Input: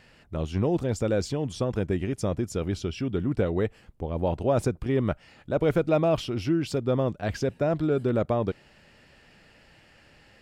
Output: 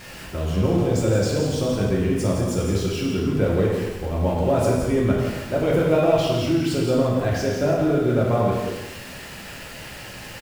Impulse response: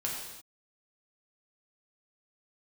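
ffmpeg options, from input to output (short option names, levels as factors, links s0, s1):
-filter_complex "[0:a]aeval=exprs='val(0)+0.5*0.0133*sgn(val(0))':c=same,aecho=1:1:170:0.473[s0];[1:a]atrim=start_sample=2205[s1];[s0][s1]afir=irnorm=-1:irlink=0"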